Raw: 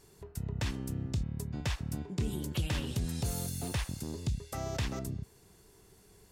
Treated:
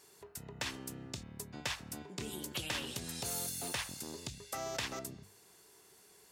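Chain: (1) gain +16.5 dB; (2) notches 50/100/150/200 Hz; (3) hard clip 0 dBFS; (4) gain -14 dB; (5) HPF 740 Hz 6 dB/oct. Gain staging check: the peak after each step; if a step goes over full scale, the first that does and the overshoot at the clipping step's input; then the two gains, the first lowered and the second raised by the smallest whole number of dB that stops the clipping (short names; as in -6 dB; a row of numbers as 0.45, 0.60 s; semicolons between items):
-7.0, -5.5, -5.5, -19.5, -20.0 dBFS; no overload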